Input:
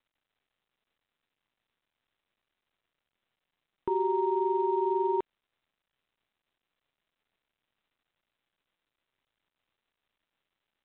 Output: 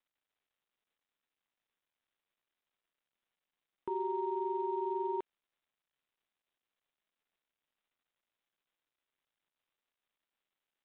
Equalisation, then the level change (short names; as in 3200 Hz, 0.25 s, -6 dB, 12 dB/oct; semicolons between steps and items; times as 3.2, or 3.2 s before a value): low shelf 160 Hz -8.5 dB; -6.5 dB